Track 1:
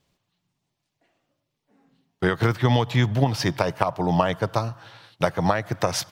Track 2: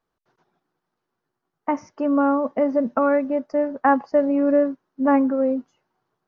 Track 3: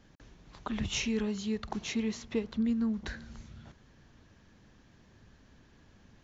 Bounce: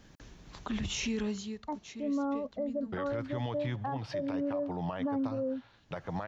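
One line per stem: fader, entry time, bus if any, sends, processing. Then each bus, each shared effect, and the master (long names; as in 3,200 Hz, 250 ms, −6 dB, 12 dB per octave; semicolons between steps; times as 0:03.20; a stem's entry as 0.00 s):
−13.0 dB, 0.70 s, no send, low-pass filter 3,700 Hz 12 dB per octave
−11.0 dB, 0.00 s, no send, every bin expanded away from the loudest bin 1.5 to 1
+3.0 dB, 0.00 s, no send, high-shelf EQ 5,300 Hz +6 dB; automatic ducking −16 dB, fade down 0.45 s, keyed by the second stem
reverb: not used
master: brickwall limiter −26 dBFS, peak gain reduction 11 dB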